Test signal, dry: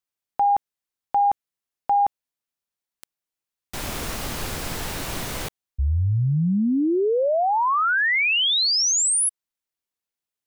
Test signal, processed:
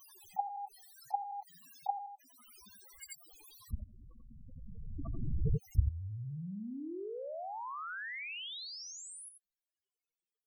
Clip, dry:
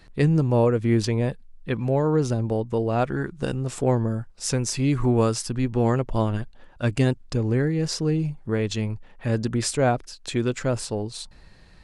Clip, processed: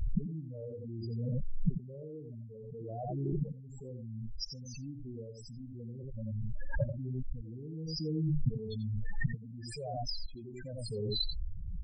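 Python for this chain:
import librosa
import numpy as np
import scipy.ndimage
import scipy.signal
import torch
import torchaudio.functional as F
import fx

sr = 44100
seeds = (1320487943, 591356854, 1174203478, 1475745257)

y = fx.gate_flip(x, sr, shuts_db=-23.0, range_db=-33)
y = fx.spec_topn(y, sr, count=4)
y = y + 10.0 ** (-8.5 / 20.0) * np.pad(y, (int(87 * sr / 1000.0), 0))[:len(y)]
y = fx.pre_swell(y, sr, db_per_s=21.0)
y = F.gain(torch.from_numpy(y), 11.0).numpy()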